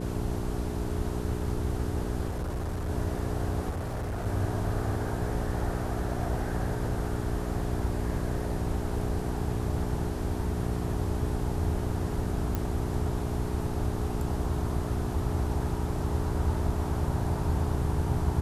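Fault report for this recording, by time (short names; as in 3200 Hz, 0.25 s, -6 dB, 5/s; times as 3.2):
hum 60 Hz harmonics 7 -34 dBFS
2.28–2.9 clipped -28.5 dBFS
3.69–4.27 clipped -29.5 dBFS
12.55 pop -16 dBFS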